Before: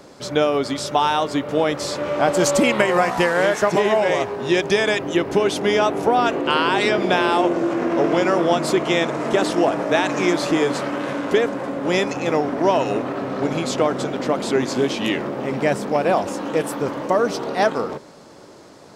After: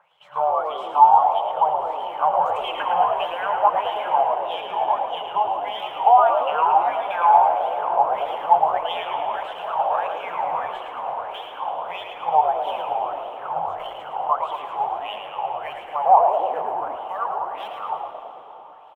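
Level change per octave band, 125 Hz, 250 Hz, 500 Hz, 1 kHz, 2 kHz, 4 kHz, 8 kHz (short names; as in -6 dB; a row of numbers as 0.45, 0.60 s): under -20 dB, under -25 dB, -7.0 dB, +5.5 dB, -11.5 dB, -8.5 dB, under -30 dB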